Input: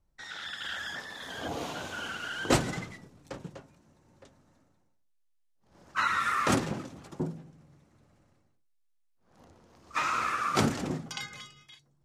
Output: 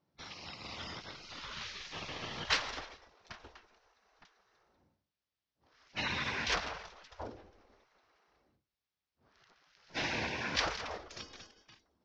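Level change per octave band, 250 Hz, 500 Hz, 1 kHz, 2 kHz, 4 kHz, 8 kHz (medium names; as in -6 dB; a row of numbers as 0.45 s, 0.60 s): -13.5 dB, -8.5 dB, -10.0 dB, -4.0 dB, 0.0 dB, -7.5 dB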